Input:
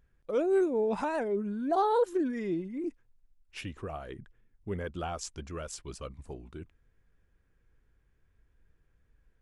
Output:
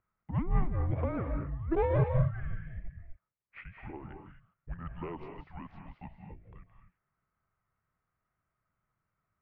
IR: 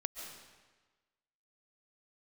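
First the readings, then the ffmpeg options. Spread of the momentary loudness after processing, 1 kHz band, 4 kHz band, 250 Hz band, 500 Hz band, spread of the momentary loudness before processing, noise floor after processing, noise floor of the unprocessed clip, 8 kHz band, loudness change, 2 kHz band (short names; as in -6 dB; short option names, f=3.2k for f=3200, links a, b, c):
21 LU, -7.5 dB, under -15 dB, -5.5 dB, -7.0 dB, 19 LU, under -85 dBFS, -71 dBFS, under -30 dB, -1.5 dB, -4.0 dB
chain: -filter_complex "[0:a]aeval=exprs='0.133*(cos(1*acos(clip(val(0)/0.133,-1,1)))-cos(1*PI/2))+0.0188*(cos(3*acos(clip(val(0)/0.133,-1,1)))-cos(3*PI/2))':c=same[a];[1:a]atrim=start_sample=2205,afade=t=out:st=0.26:d=0.01,atrim=end_sample=11907,asetrate=34398,aresample=44100[b];[a][b]afir=irnorm=-1:irlink=0,highpass=f=220:t=q:w=0.5412,highpass=f=220:t=q:w=1.307,lowpass=f=2.8k:t=q:w=0.5176,lowpass=f=2.8k:t=q:w=0.7071,lowpass=f=2.8k:t=q:w=1.932,afreqshift=-350,volume=1.5dB"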